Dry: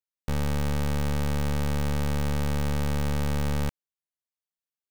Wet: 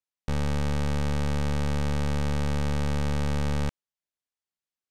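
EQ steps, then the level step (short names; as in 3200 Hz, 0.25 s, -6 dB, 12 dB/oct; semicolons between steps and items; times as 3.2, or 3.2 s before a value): LPF 8300 Hz 12 dB/oct; 0.0 dB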